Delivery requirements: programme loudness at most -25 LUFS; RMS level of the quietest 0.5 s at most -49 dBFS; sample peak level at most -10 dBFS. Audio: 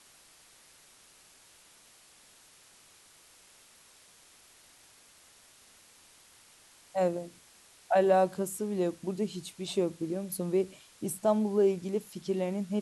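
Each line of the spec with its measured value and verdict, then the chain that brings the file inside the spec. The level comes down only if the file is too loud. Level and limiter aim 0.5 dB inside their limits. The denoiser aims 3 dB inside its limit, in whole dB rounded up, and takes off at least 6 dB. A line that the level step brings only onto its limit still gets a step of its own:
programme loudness -30.5 LUFS: pass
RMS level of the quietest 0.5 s -59 dBFS: pass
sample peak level -13.5 dBFS: pass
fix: none needed

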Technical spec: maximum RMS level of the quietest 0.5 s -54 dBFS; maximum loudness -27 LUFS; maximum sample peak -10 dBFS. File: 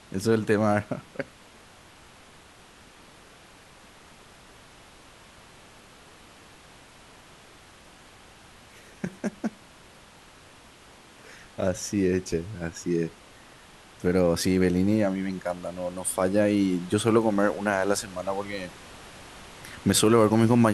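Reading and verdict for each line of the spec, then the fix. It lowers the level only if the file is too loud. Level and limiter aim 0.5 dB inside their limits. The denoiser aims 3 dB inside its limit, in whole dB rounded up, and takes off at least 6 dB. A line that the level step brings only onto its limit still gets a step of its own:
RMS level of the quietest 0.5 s -52 dBFS: fail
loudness -25.5 LUFS: fail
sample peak -7.0 dBFS: fail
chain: noise reduction 6 dB, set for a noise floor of -52 dBFS; trim -2 dB; peak limiter -10.5 dBFS

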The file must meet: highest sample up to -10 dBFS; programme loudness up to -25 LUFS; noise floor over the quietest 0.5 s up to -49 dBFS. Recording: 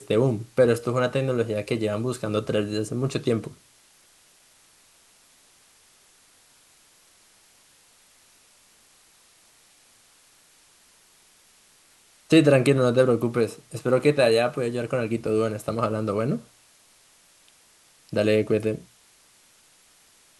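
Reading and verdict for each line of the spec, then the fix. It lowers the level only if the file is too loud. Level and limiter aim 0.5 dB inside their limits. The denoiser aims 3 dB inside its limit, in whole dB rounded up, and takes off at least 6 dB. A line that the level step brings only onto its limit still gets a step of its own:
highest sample -5.5 dBFS: fail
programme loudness -23.5 LUFS: fail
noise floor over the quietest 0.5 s -58 dBFS: pass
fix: trim -2 dB; peak limiter -10.5 dBFS

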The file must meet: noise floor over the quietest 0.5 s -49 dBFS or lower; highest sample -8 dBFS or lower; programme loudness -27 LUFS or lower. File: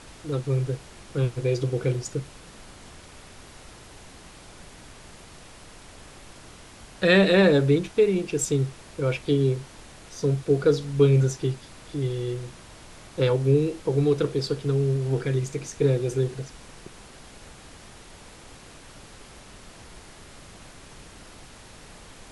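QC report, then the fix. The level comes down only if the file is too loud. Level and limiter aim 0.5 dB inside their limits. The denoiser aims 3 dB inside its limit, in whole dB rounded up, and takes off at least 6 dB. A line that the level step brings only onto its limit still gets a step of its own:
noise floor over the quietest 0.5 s -46 dBFS: fail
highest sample -6.0 dBFS: fail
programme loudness -24.0 LUFS: fail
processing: trim -3.5 dB

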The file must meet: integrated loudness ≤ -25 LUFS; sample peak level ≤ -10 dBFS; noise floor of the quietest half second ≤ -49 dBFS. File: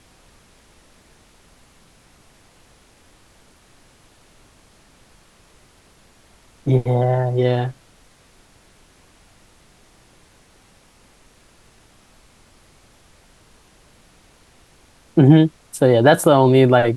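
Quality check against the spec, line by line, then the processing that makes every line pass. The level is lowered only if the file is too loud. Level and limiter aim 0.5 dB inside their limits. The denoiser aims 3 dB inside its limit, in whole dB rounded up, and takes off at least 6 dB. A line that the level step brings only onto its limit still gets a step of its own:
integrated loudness -16.0 LUFS: fail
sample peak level -1.5 dBFS: fail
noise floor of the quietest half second -53 dBFS: pass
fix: trim -9.5 dB

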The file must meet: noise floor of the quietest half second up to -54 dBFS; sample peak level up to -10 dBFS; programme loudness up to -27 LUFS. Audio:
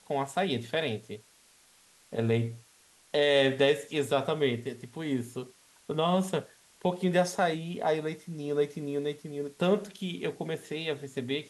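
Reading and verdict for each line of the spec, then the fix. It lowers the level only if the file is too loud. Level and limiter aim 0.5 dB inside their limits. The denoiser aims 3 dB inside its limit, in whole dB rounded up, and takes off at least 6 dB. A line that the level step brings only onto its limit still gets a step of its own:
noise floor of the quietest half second -61 dBFS: pass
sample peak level -13.0 dBFS: pass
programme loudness -30.5 LUFS: pass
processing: none needed

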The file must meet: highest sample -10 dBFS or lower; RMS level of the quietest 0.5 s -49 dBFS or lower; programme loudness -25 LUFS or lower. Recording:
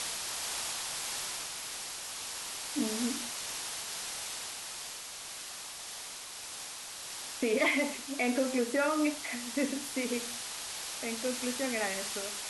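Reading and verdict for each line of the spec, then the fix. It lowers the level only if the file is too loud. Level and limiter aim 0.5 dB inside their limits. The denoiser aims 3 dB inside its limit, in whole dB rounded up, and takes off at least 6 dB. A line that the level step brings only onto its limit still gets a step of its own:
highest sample -18.0 dBFS: pass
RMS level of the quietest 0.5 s -44 dBFS: fail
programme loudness -34.0 LUFS: pass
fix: noise reduction 8 dB, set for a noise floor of -44 dBFS

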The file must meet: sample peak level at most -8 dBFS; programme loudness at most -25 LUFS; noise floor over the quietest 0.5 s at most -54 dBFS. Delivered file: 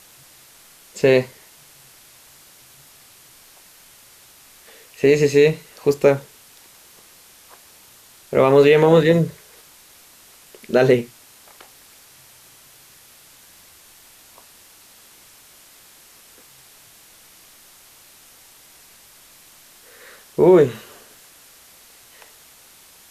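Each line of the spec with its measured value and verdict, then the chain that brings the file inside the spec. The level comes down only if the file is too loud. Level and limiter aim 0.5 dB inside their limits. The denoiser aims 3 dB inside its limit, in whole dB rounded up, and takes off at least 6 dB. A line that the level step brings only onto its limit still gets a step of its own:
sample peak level -3.5 dBFS: fail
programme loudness -16.5 LUFS: fail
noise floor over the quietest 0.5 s -49 dBFS: fail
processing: trim -9 dB

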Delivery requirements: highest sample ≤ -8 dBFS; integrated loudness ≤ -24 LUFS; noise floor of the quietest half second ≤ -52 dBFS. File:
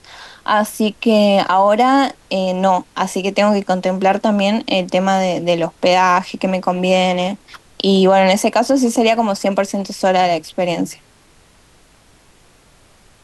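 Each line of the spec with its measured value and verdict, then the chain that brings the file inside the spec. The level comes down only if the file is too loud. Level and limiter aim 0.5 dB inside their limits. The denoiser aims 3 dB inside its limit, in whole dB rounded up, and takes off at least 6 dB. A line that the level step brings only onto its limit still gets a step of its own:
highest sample -4.0 dBFS: fail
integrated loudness -16.0 LUFS: fail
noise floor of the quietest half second -50 dBFS: fail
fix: trim -8.5 dB

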